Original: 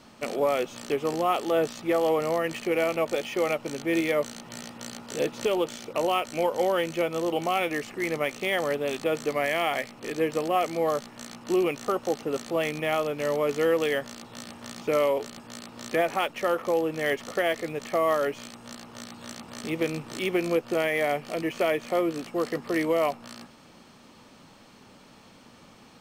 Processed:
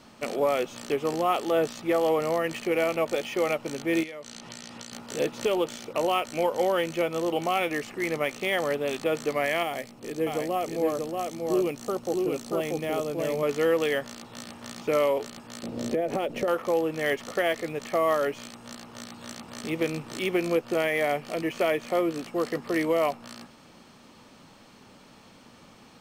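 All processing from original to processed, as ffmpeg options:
-filter_complex "[0:a]asettb=1/sr,asplit=3[s0][s1][s2];[s0]atrim=end=4.034[s3];[s1]atrim=start=4.03:end=4.92,asetpts=PTS-STARTPTS,afade=t=in:d=0.004:c=qsin,afade=t=out:st=0.886:d=0.004:c=qsin,lowpass=5200,aemphasis=mode=production:type=75kf,acompressor=threshold=0.0158:ratio=12:attack=3.2:release=140:knee=1:detection=peak[s4];[s2]atrim=start=4.916[s5];[s3][s4]acrossfade=d=0.004:c1=hsin:c2=qsin[s6];[s6][s5]acrossfade=d=0.004:c1=qsin:c2=hsin,asettb=1/sr,asplit=3[s7][s8][s9];[s7]atrim=end=9.634[s10];[s8]atrim=start=9.63:end=13.43,asetpts=PTS-STARTPTS,afade=t=in:d=0.004:c=qsin,afade=t=out:st=3.796:d=0.004:c=qsin,equalizer=f=1800:w=0.47:g=-8,aecho=1:1:635:0.708,atrim=end_sample=167580[s11];[s9]atrim=start=13.426[s12];[s10][s11]acrossfade=d=0.004:c1=hsin:c2=qsin[s13];[s13][s12]acrossfade=d=0.004:c1=qsin:c2=hsin,asettb=1/sr,asplit=3[s14][s15][s16];[s14]atrim=end=15.634[s17];[s15]atrim=start=15.63:end=16.48,asetpts=PTS-STARTPTS,afade=t=in:d=0.004:c=qsin,afade=t=out:st=0.846:d=0.004:c=qsin,lowshelf=f=740:t=q:w=1.5:g=10.5,acompressor=threshold=0.0708:ratio=8:attack=3.2:release=140:knee=1:detection=peak[s18];[s16]atrim=start=16.476[s19];[s17][s18]acrossfade=d=0.004:c1=hsin:c2=qsin[s20];[s20][s19]acrossfade=d=0.004:c1=qsin:c2=hsin"

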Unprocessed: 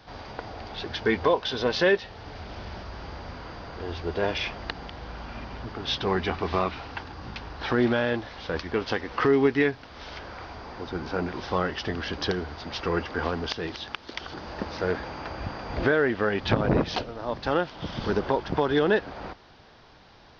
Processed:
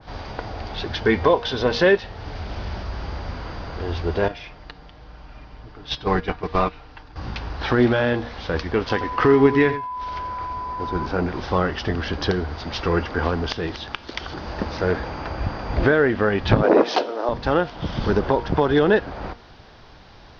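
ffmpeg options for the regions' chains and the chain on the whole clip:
-filter_complex "[0:a]asettb=1/sr,asplit=3[s0][s1][s2];[s0]atrim=end=4.284[s3];[s1]atrim=start=4.28:end=7.16,asetpts=PTS-STARTPTS,afade=t=in:d=0.004:c=qsin,afade=t=out:st=2.876:d=0.004:c=qsin,agate=range=0.224:threshold=0.0447:ratio=16:release=100:detection=peak,asubboost=boost=3:cutoff=67,aecho=1:1:6.6:0.42,atrim=end_sample=127008[s4];[s2]atrim=start=7.156[s5];[s3][s4]acrossfade=d=0.004:c1=hsin:c2=qsin[s6];[s6][s5]acrossfade=d=0.004:c1=qsin:c2=hsin,asettb=1/sr,asplit=3[s7][s8][s9];[s7]atrim=end=8.894[s10];[s8]atrim=start=8.89:end=11.06,asetpts=PTS-STARTPTS,afade=t=in:d=0.004:c=qsin,afade=t=out:st=2.166:d=0.004:c=qsin,agate=range=0.0224:threshold=0.0141:ratio=3:release=100:detection=peak,aeval=exprs='val(0)+0.02*sin(2*PI*1000*n/s)':c=same,aecho=1:1:89:0.251,atrim=end_sample=95697[s11];[s9]atrim=start=11.056[s12];[s10][s11]acrossfade=d=0.004:c1=hsin:c2=qsin[s13];[s13][s12]acrossfade=d=0.004:c1=qsin:c2=hsin,asettb=1/sr,asplit=3[s14][s15][s16];[s14]atrim=end=16.634[s17];[s15]atrim=start=16.63:end=17.29,asetpts=PTS-STARTPTS,afade=t=in:d=0.004:c=qsin,afade=t=out:st=0.656:d=0.004:c=qsin,highpass=f=330:w=0.5412,highpass=f=330:w=1.3066,equalizer=f=2700:t=o:w=2.8:g=-5,acontrast=86[s18];[s16]atrim=start=17.286[s19];[s17][s18]acrossfade=d=0.004:c1=hsin:c2=qsin[s20];[s20][s19]acrossfade=d=0.004:c1=qsin:c2=hsin,lowshelf=f=90:g=8.5,bandreject=f=236:t=h:w=4,bandreject=f=472:t=h:w=4,bandreject=f=708:t=h:w=4,bandreject=f=944:t=h:w=4,bandreject=f=1180:t=h:w=4,bandreject=f=1416:t=h:w=4,bandreject=f=1652:t=h:w=4,bandreject=f=1888:t=h:w=4,bandreject=f=2124:t=h:w=4,bandreject=f=2360:t=h:w=4,bandreject=f=2596:t=h:w=4,bandreject=f=2832:t=h:w=4,bandreject=f=3068:t=h:w=4,bandreject=f=3304:t=h:w=4,bandreject=f=3540:t=h:w=4,bandreject=f=3776:t=h:w=4,bandreject=f=4012:t=h:w=4,bandreject=f=4248:t=h:w=4,bandreject=f=4484:t=h:w=4,bandreject=f=4720:t=h:w=4,bandreject=f=4956:t=h:w=4,bandreject=f=5192:t=h:w=4,bandreject=f=5428:t=h:w=4,adynamicequalizer=threshold=0.00891:dfrequency=2000:dqfactor=0.7:tfrequency=2000:tqfactor=0.7:attack=5:release=100:ratio=0.375:range=1.5:mode=cutabove:tftype=highshelf,volume=1.78"

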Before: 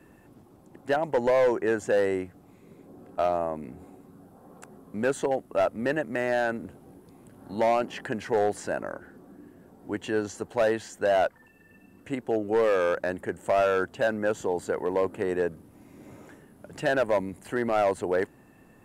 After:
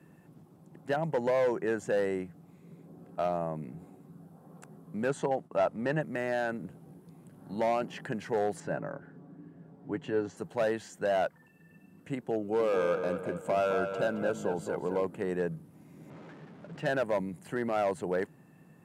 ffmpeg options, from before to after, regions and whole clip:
-filter_complex "[0:a]asettb=1/sr,asplit=3[s0][s1][s2];[s0]atrim=end=5.094[s3];[s1]atrim=start=5.09:end=6.01,asetpts=PTS-STARTPTS,afade=t=in:d=0.004:c=qsin,afade=t=out:st=0.916:d=0.004:c=qsin,agate=range=0.0224:threshold=0.00355:ratio=3:release=100:detection=peak,lowpass=8800,equalizer=f=910:t=o:w=0.85:g=5[s4];[s2]atrim=start=6.006[s5];[s3][s4]acrossfade=d=0.004:c1=hsin:c2=qsin[s6];[s6][s5]acrossfade=d=0.004:c1=qsin:c2=hsin,asettb=1/sr,asplit=3[s7][s8][s9];[s7]atrim=end=8.604[s10];[s8]atrim=start=8.6:end=10.37,asetpts=PTS-STARTPTS,afade=t=in:d=0.004:c=qsin,afade=t=out:st=1.766:d=0.004:c=qsin,aemphasis=mode=reproduction:type=75fm,aecho=1:1:7.1:0.38,atrim=end_sample=78057[s11];[s9]atrim=start=10.366[s12];[s10][s11]acrossfade=d=0.004:c1=hsin:c2=qsin[s13];[s13][s12]acrossfade=d=0.004:c1=qsin:c2=hsin,asettb=1/sr,asplit=3[s14][s15][s16];[s14]atrim=end=12.384[s17];[s15]atrim=start=12.38:end=15.04,asetpts=PTS-STARTPTS,afade=t=in:d=0.004:c=qsin,afade=t=out:st=2.656:d=0.004:c=qsin,asuperstop=centerf=1800:order=4:qfactor=5,asplit=2[s18][s19];[s19]adelay=218,lowpass=f=3700:p=1,volume=0.447,asplit=2[s20][s21];[s21]adelay=218,lowpass=f=3700:p=1,volume=0.48,asplit=2[s22][s23];[s23]adelay=218,lowpass=f=3700:p=1,volume=0.48,asplit=2[s24][s25];[s25]adelay=218,lowpass=f=3700:p=1,volume=0.48,asplit=2[s26][s27];[s27]adelay=218,lowpass=f=3700:p=1,volume=0.48,asplit=2[s28][s29];[s29]adelay=218,lowpass=f=3700:p=1,volume=0.48[s30];[s18][s20][s22][s24][s26][s28][s30]amix=inputs=7:normalize=0,atrim=end_sample=117306[s31];[s16]atrim=start=15.036[s32];[s17][s31]acrossfade=d=0.004:c1=hsin:c2=qsin[s33];[s33][s32]acrossfade=d=0.004:c1=qsin:c2=hsin,asettb=1/sr,asplit=3[s34][s35][s36];[s34]atrim=end=16.104[s37];[s35]atrim=start=16.1:end=16.87,asetpts=PTS-STARTPTS,afade=t=in:d=0.004:c=qsin,afade=t=out:st=0.766:d=0.004:c=qsin,aeval=exprs='val(0)+0.5*0.00891*sgn(val(0))':c=same,lowshelf=f=180:g=-10,adynamicsmooth=sensitivity=5.5:basefreq=2500[s38];[s36]atrim=start=16.866[s39];[s37][s38]acrossfade=d=0.004:c1=hsin:c2=qsin[s40];[s40][s39]acrossfade=d=0.004:c1=qsin:c2=hsin,highpass=91,equalizer=f=160:w=3.5:g=14,volume=0.531"

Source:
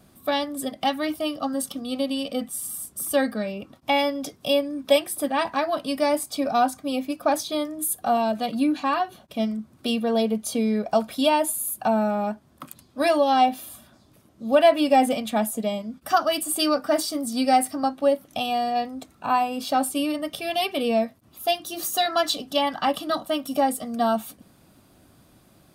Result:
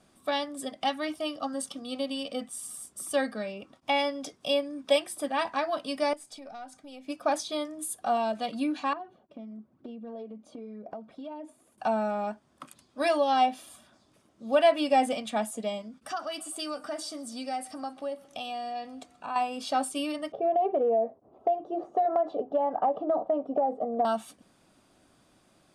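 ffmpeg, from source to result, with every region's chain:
-filter_complex "[0:a]asettb=1/sr,asplit=3[s0][s1][s2];[s0]atrim=end=6.134[s3];[s1]atrim=start=6.13:end=7.08,asetpts=PTS-STARTPTS,afade=t=in:d=0.004:c=qsin,afade=t=out:st=0.946:d=0.004:c=qsin,bandreject=f=1100:w=5.4,acompressor=threshold=0.0224:ratio=4:attack=3.2:release=140:knee=1:detection=peak,aeval=exprs='(tanh(8.91*val(0)+0.7)-tanh(0.7))/8.91':c=same[s4];[s2]atrim=start=7.076[s5];[s3][s4]acrossfade=d=0.004:c1=hsin:c2=qsin[s6];[s6][s5]acrossfade=d=0.004:c1=qsin:c2=hsin,asettb=1/sr,asplit=3[s7][s8][s9];[s7]atrim=end=8.934[s10];[s8]atrim=start=8.93:end=11.78,asetpts=PTS-STARTPTS,afade=t=in:d=0.004:c=qsin,afade=t=out:st=2.846:d=0.004:c=qsin,aphaser=in_gain=1:out_gain=1:delay=3.7:decay=0.45:speed=1:type=sinusoidal,bandpass=f=270:t=q:w=0.71,acompressor=threshold=0.0316:ratio=12:attack=3.2:release=140:knee=1:detection=peak[s11];[s9]atrim=start=11.776[s12];[s10][s11]acrossfade=d=0.004:c1=hsin:c2=qsin[s13];[s13][s12]acrossfade=d=0.004:c1=qsin:c2=hsin,asettb=1/sr,asplit=3[s14][s15][s16];[s14]atrim=end=15.884[s17];[s15]atrim=start=15.88:end=19.36,asetpts=PTS-STARTPTS,afade=t=in:d=0.004:c=qsin,afade=t=out:st=3.476:d=0.004:c=qsin,acompressor=threshold=0.0251:ratio=2:attack=3.2:release=140:knee=1:detection=peak,aecho=1:1:132|264|396|528:0.075|0.0435|0.0252|0.0146,atrim=end_sample=153468[s18];[s16]atrim=start=19.356[s19];[s17][s18]acrossfade=d=0.004:c1=hsin:c2=qsin[s20];[s20][s19]acrossfade=d=0.004:c1=qsin:c2=hsin,asettb=1/sr,asplit=3[s21][s22][s23];[s21]atrim=end=20.324[s24];[s22]atrim=start=20.32:end=24.05,asetpts=PTS-STARTPTS,afade=t=in:d=0.004:c=qsin,afade=t=out:st=3.726:d=0.004:c=qsin,lowpass=f=740:t=q:w=3,equalizer=f=430:t=o:w=0.68:g=12.5,acompressor=threshold=0.158:ratio=10:attack=3.2:release=140:knee=1:detection=peak[s25];[s23]atrim=start=24.046[s26];[s24][s25]acrossfade=d=0.004:c1=hsin:c2=qsin[s27];[s27][s26]acrossfade=d=0.004:c1=qsin:c2=hsin,lowpass=f=9600:w=0.5412,lowpass=f=9600:w=1.3066,equalizer=f=82:w=0.42:g=-9.5,bandreject=f=4100:w=21,volume=0.631"

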